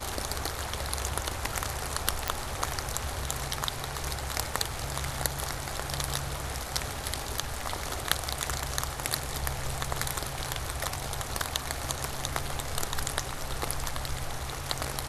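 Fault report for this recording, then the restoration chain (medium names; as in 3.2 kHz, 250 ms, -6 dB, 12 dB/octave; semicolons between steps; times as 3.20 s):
2.28 s: pop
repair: de-click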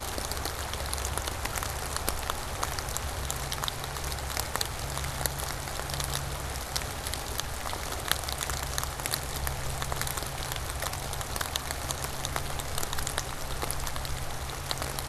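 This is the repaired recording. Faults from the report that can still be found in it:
nothing left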